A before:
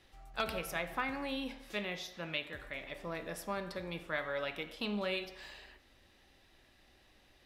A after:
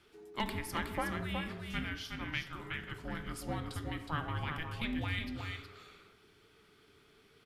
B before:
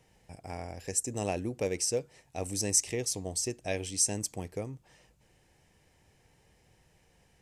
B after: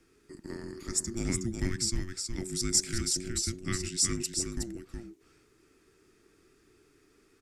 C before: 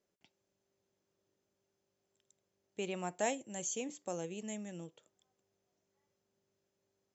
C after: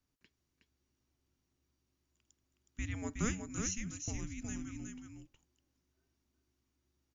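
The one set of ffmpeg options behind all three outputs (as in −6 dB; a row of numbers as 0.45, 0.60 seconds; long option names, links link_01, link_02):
-af "afreqshift=-460,aecho=1:1:367:0.531"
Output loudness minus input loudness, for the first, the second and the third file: 0.0, +0.5, 0.0 LU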